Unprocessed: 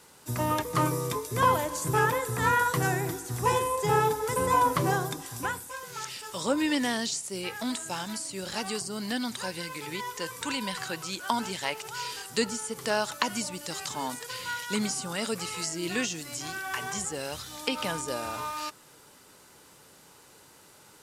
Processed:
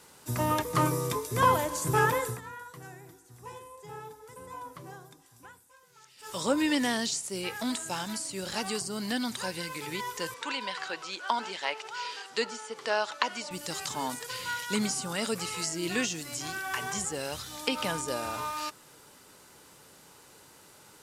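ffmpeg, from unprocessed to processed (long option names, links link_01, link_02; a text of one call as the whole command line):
ffmpeg -i in.wav -filter_complex "[0:a]asettb=1/sr,asplit=3[link_01][link_02][link_03];[link_01]atrim=end=10.344[link_04];[link_02]atrim=start=10.34:end=13.51,asetpts=PTS-STARTPTS,afade=type=in:duration=0.004:curve=qsin,afade=type=out:start_time=3.166:duration=0.004:curve=qsin,highpass=410,lowpass=4600[link_05];[link_03]atrim=start=13.506[link_06];[link_04][link_05]acrossfade=duration=0.004:curve1=hsin:curve2=qsin[link_07];[link_07][link_06]acrossfade=duration=0.004:curve1=qsin:curve2=hsin,asplit=3[link_08][link_09][link_10];[link_08]atrim=end=2.41,asetpts=PTS-STARTPTS,afade=type=out:start_time=2.27:duration=0.14:silence=0.105925[link_11];[link_09]atrim=start=2.41:end=6.17,asetpts=PTS-STARTPTS,volume=-19.5dB[link_12];[link_10]atrim=start=6.17,asetpts=PTS-STARTPTS,afade=type=in:duration=0.14:silence=0.105925[link_13];[link_11][link_12][link_13]concat=n=3:v=0:a=1" out.wav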